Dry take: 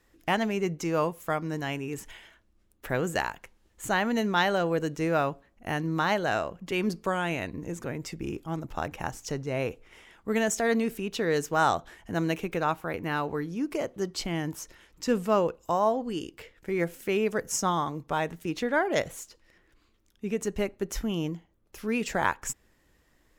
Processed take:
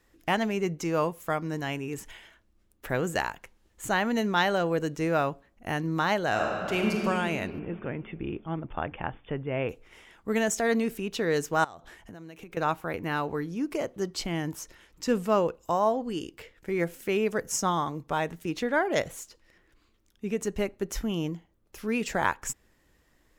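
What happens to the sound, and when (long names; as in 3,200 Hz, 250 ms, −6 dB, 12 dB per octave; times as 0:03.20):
0:06.29–0:06.95: thrown reverb, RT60 2.8 s, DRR −1 dB
0:07.59–0:09.69: linear-phase brick-wall low-pass 3,600 Hz
0:11.64–0:12.57: downward compressor 12 to 1, threshold −40 dBFS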